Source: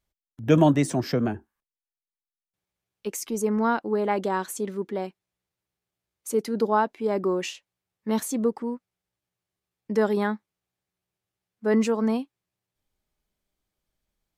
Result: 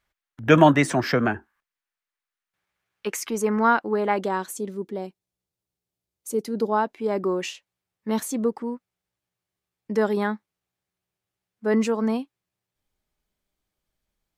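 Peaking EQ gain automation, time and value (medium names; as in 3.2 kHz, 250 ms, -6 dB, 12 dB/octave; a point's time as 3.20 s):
peaking EQ 1.6 kHz 2.1 oct
3.07 s +13.5 dB
4.23 s +3.5 dB
4.68 s -7.5 dB
6.30 s -7.5 dB
6.99 s +1.5 dB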